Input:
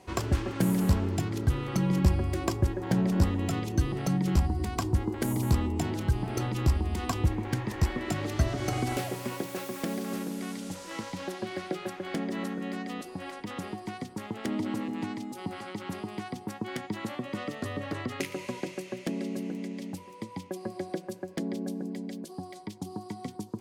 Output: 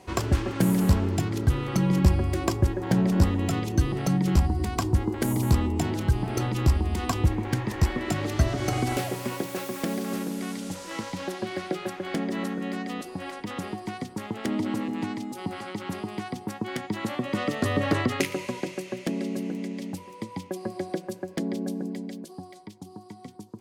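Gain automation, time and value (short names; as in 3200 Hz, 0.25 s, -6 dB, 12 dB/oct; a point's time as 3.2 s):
16.84 s +3.5 dB
17.92 s +11 dB
18.51 s +3.5 dB
21.85 s +3.5 dB
22.84 s -5 dB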